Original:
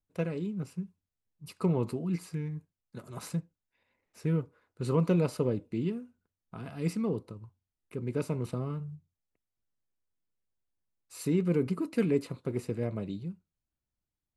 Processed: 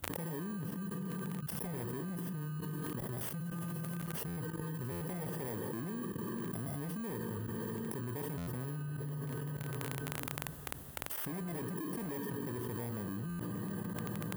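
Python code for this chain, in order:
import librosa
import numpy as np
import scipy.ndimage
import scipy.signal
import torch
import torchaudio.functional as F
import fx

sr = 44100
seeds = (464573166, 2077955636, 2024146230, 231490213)

p1 = fx.bit_reversed(x, sr, seeds[0], block=32)
p2 = fx.peak_eq(p1, sr, hz=2300.0, db=-10.5, octaves=0.29)
p3 = p2 + 10.0 ** (-19.0 / 20.0) * np.pad(p2, (int(76 * sr / 1000.0), 0))[:len(p2)]
p4 = fx.rev_plate(p3, sr, seeds[1], rt60_s=2.2, hf_ratio=0.95, predelay_ms=0, drr_db=12.0)
p5 = fx.dmg_crackle(p4, sr, seeds[2], per_s=27.0, level_db=-48.0)
p6 = fx.fold_sine(p5, sr, drive_db=13, ceiling_db=-14.5)
p7 = p5 + F.gain(torch.from_numpy(p6), -9.0).numpy()
p8 = fx.level_steps(p7, sr, step_db=18)
p9 = scipy.signal.sosfilt(scipy.signal.butter(4, 46.0, 'highpass', fs=sr, output='sos'), p8)
p10 = fx.peak_eq(p9, sr, hz=5200.0, db=-12.5, octaves=1.4)
p11 = fx.buffer_glitch(p10, sr, at_s=(4.27, 4.91, 8.37, 13.29), block=512, repeats=8)
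p12 = fx.env_flatten(p11, sr, amount_pct=100)
y = F.gain(torch.from_numpy(p12), -4.5).numpy()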